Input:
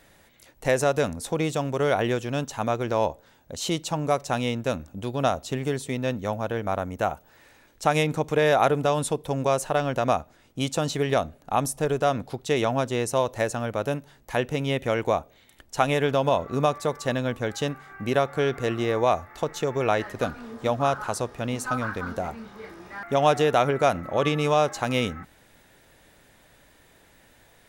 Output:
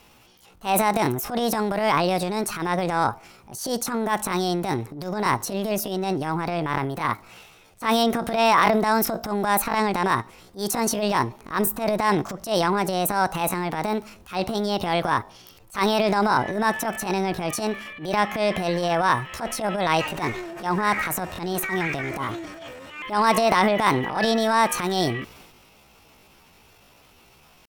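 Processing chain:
pitch shifter +7 semitones
transient designer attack −12 dB, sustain +7 dB
level +3 dB

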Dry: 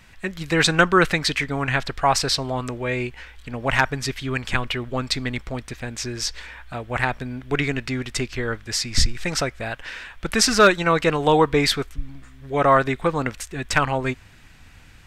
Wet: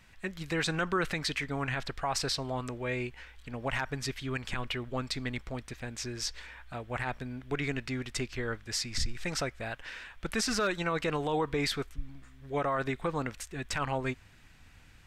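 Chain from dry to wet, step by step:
brickwall limiter −12.5 dBFS, peak gain reduction 8.5 dB
level −8.5 dB

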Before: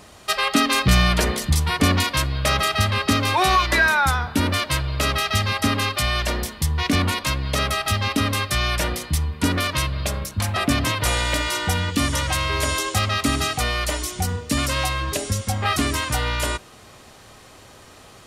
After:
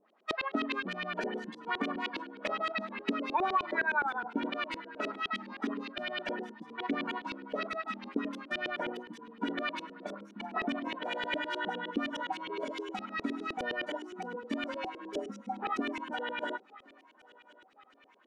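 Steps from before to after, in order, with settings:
noise reduction from a noise print of the clip's start 16 dB
downward compressor 10 to 1, threshold −20 dBFS, peak gain reduction 9.5 dB
linear-phase brick-wall high-pass 190 Hz
on a send: feedback echo with a high-pass in the loop 1,069 ms, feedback 62%, high-pass 420 Hz, level −22 dB
on the sum: auto-filter low-pass saw up 9.7 Hz 350–3,300 Hz
level −8.5 dB

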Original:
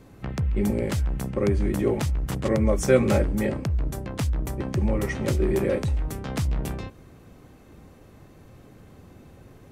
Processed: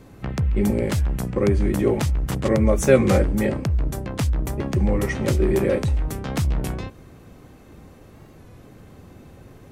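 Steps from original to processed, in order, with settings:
wow of a warped record 33 1/3 rpm, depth 100 cents
level +3.5 dB

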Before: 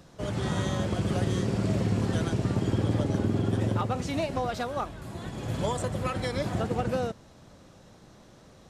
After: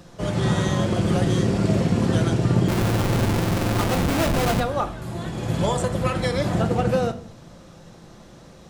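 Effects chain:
0:02.68–0:04.60: comparator with hysteresis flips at −32 dBFS
convolution reverb RT60 0.50 s, pre-delay 6 ms, DRR 7.5 dB
level +6 dB

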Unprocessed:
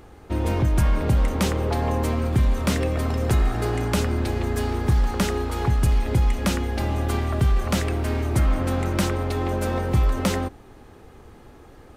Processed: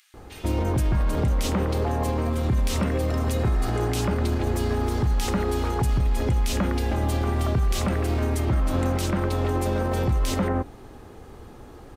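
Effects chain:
multiband delay without the direct sound highs, lows 140 ms, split 2,100 Hz
brickwall limiter −19 dBFS, peak gain reduction 7.5 dB
level +3 dB

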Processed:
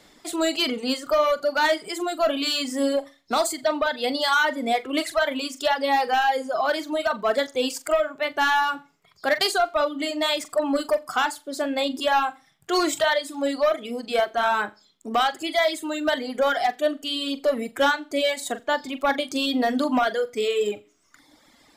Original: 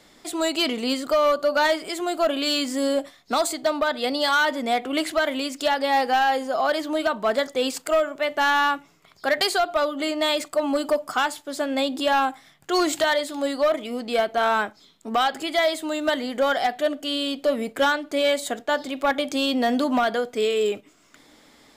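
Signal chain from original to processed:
flutter between parallel walls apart 7.4 metres, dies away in 0.31 s
reverb reduction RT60 1.3 s

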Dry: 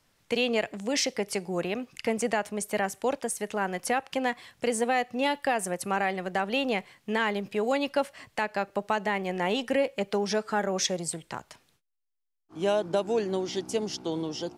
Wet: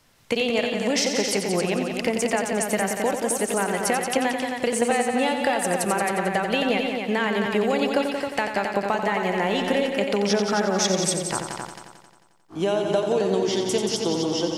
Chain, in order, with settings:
downward compressor, threshold −28 dBFS, peak gain reduction 8 dB
on a send: echo machine with several playback heads 89 ms, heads all three, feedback 41%, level −8 dB
on the sum: level +8 dB

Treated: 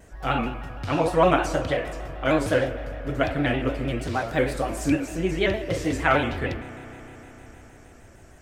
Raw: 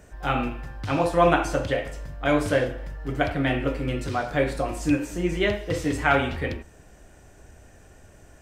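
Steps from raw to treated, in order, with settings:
0:04.14–0:04.93: high-shelf EQ 8,800 Hz +7 dB
convolution reverb RT60 4.7 s, pre-delay 32 ms, DRR 12 dB
pitch modulation by a square or saw wave square 6.5 Hz, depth 100 cents

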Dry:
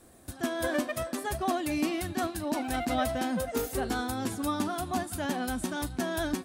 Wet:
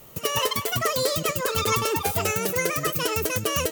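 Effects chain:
tilt shelving filter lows −7.5 dB, about 1,300 Hz
wrong playback speed 45 rpm record played at 78 rpm
low-shelf EQ 430 Hz +10.5 dB
level +6.5 dB

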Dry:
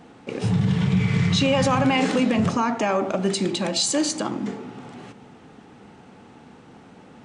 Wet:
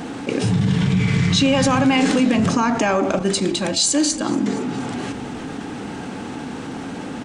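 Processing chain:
0:03.19–0:04.29: downward expander −19 dBFS
high-shelf EQ 4,200 Hz +7 dB
hollow resonant body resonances 280/1,600 Hz, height 7 dB
on a send: echo with shifted repeats 235 ms, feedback 55%, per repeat −48 Hz, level −23 dB
on the sum: envelope flattener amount 50%
level −2 dB

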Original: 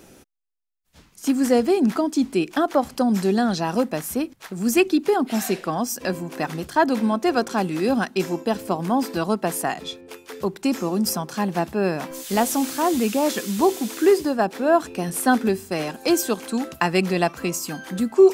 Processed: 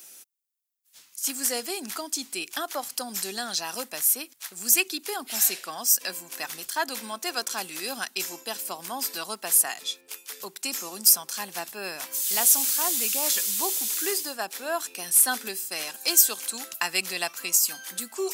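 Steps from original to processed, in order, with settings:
first difference
level +8 dB

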